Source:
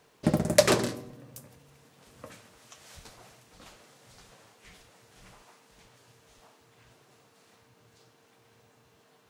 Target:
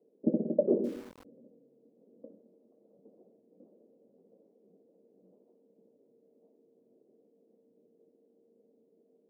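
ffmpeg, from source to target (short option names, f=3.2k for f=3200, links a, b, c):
-filter_complex "[0:a]asuperpass=centerf=330:order=8:qfactor=0.96,asettb=1/sr,asplit=3[a][b][c];[a]atrim=end=0.844[d];[b]atrim=start=0.84:end=1.25,asetpts=PTS-STARTPTS,afade=t=in:d=0.004:c=qsin,afade=t=out:st=0.406:d=0.004:c=qsin,aeval=exprs='val(0)*gte(abs(val(0)),0.00422)':c=same[e];[c]atrim=start=1.246[f];[d][e]acrossfade=d=0.004:c1=hsin:c2=qsin[g];[g][f]acrossfade=d=0.004:c1=qsin:c2=hsin"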